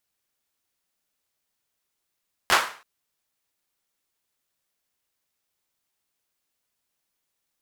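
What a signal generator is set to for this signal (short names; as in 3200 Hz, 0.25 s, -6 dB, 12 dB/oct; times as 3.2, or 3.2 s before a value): hand clap length 0.33 s, bursts 3, apart 11 ms, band 1200 Hz, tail 0.41 s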